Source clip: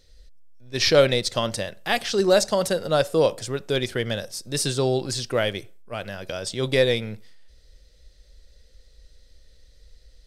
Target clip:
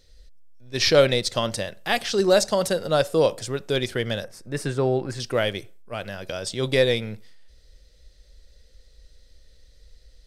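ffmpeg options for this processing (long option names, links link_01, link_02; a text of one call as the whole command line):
ffmpeg -i in.wav -filter_complex "[0:a]asettb=1/sr,asplit=3[link_01][link_02][link_03];[link_01]atrim=end=4.244[link_04];[link_02]atrim=start=4.24:end=5.2,asetpts=PTS-STARTPTS,afade=type=in:duration=0.004:curve=qsin,afade=type=out:start_time=0.956:duration=0.004:curve=qsin,highshelf=frequency=2700:width_type=q:width=1.5:gain=-11[link_05];[link_03]atrim=start=5.196[link_06];[link_04][link_05]acrossfade=duration=0.004:curve1=hsin:curve2=qsin[link_07];[link_07][link_06]acrossfade=duration=0.004:curve1=qsin:curve2=hsin" out.wav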